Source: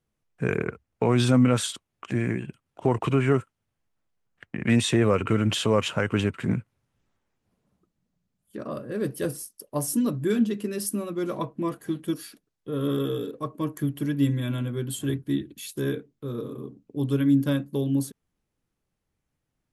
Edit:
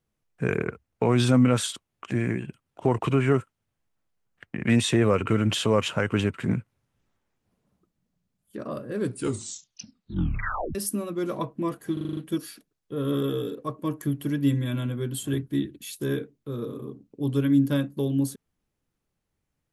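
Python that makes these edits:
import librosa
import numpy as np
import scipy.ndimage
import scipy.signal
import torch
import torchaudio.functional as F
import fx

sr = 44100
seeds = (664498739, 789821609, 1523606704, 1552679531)

y = fx.edit(x, sr, fx.tape_stop(start_s=8.95, length_s=1.8),
    fx.stutter(start_s=11.93, slice_s=0.04, count=7), tone=tone)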